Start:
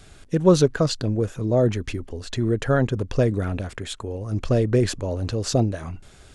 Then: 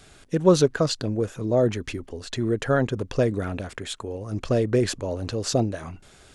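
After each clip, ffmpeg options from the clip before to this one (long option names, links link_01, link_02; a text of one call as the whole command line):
ffmpeg -i in.wav -af "lowshelf=frequency=130:gain=-8.5" out.wav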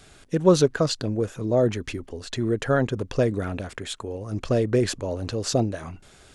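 ffmpeg -i in.wav -af anull out.wav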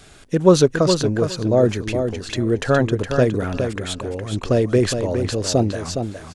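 ffmpeg -i in.wav -af "aecho=1:1:414|828|1242:0.447|0.067|0.0101,volume=4.5dB" out.wav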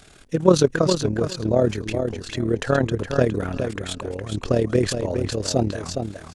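ffmpeg -i in.wav -af "tremolo=f=37:d=0.667" out.wav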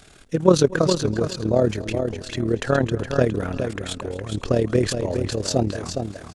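ffmpeg -i in.wav -af "aecho=1:1:244|488|732:0.0944|0.033|0.0116" out.wav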